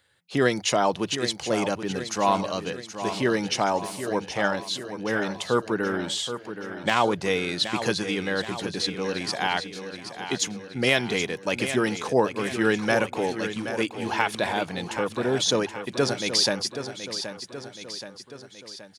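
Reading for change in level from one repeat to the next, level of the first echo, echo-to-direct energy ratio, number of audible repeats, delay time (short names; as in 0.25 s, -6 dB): -5.0 dB, -10.0 dB, -8.5 dB, 4, 0.775 s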